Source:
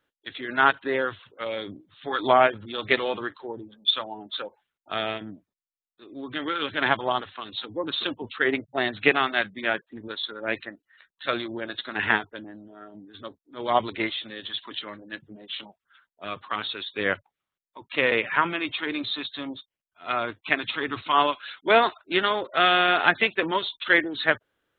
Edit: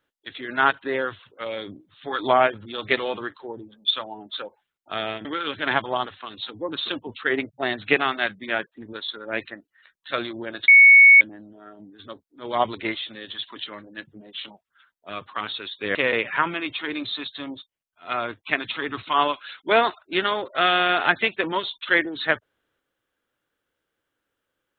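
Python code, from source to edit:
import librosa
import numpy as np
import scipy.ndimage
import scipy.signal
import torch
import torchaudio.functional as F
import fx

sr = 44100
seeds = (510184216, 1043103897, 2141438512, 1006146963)

y = fx.edit(x, sr, fx.cut(start_s=5.25, length_s=1.15),
    fx.bleep(start_s=11.83, length_s=0.53, hz=2220.0, db=-7.0),
    fx.cut(start_s=17.1, length_s=0.84), tone=tone)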